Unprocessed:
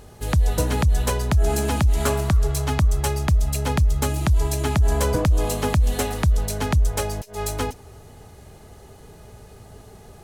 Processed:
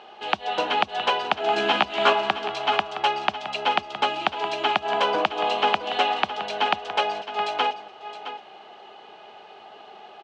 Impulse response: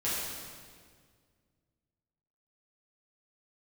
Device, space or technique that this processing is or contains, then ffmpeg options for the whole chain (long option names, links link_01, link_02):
guitar cabinet: -filter_complex "[0:a]highpass=850,highpass=91,equalizer=frequency=210:width_type=q:width=4:gain=8,equalizer=frequency=350:width_type=q:width=4:gain=8,equalizer=frequency=760:width_type=q:width=4:gain=9,equalizer=frequency=1900:width_type=q:width=4:gain=-5,equalizer=frequency=2900:width_type=q:width=4:gain=8,lowpass=frequency=3600:width=0.5412,lowpass=frequency=3600:width=1.3066,asettb=1/sr,asplit=3[link_01][link_02][link_03];[link_01]atrim=end=1.554[link_04];[link_02]atrim=start=1.55:end=2.13,asetpts=PTS-STARTPTS,afade=type=in:duration=0.004:curve=qsin,afade=type=out:start_time=0.576:duration=0.004:curve=qsin,asplit=2[link_05][link_06];[link_06]adelay=15,volume=-2dB[link_07];[link_05][link_07]amix=inputs=2:normalize=0,atrim=end_sample=25578[link_08];[link_03]atrim=start=2.126[link_09];[link_04][link_08]acrossfade=duration=0.004:curve1=hsin:curve2=qsin[link_10];[link_10][link_09]acrossfade=duration=0.004:curve1=qsin:curve2=hsin,aecho=1:1:666:0.251,volume=6dB"